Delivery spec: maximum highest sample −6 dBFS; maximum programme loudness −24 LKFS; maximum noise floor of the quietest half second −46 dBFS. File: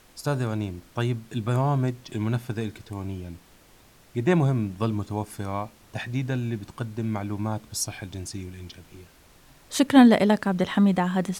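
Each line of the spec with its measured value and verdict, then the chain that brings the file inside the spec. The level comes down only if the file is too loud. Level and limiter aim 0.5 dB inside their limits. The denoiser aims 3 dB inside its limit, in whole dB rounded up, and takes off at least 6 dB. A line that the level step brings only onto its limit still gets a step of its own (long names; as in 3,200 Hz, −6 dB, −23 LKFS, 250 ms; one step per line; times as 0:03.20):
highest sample −2.5 dBFS: out of spec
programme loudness −25.0 LKFS: in spec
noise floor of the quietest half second −55 dBFS: in spec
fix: brickwall limiter −6.5 dBFS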